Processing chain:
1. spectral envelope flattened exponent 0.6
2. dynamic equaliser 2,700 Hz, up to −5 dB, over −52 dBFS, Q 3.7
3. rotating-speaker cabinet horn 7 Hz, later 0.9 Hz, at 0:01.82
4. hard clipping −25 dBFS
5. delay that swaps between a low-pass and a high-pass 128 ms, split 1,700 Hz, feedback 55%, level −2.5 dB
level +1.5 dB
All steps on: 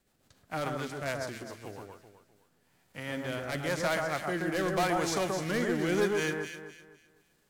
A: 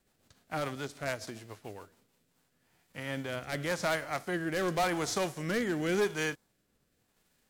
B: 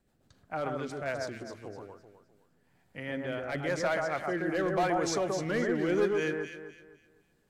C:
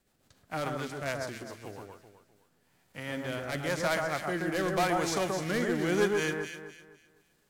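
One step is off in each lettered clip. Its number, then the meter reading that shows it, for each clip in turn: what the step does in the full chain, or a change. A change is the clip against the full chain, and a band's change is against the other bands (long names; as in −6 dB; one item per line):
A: 5, echo-to-direct ratio −3.5 dB to none audible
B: 1, 4 kHz band −3.5 dB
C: 4, distortion level −19 dB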